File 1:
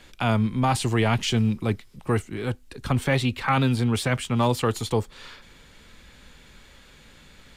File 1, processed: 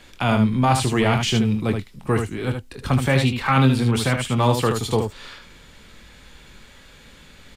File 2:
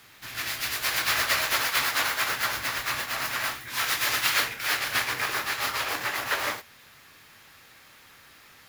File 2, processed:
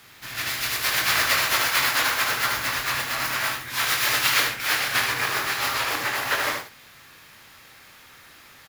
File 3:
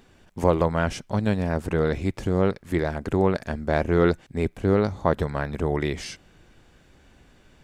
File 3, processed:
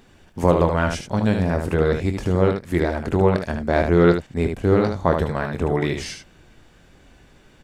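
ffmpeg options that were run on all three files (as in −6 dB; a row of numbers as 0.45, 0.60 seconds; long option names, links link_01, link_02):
-af "aecho=1:1:23|75:0.299|0.501,volume=2.5dB"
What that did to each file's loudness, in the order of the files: +4.0, +3.5, +4.0 LU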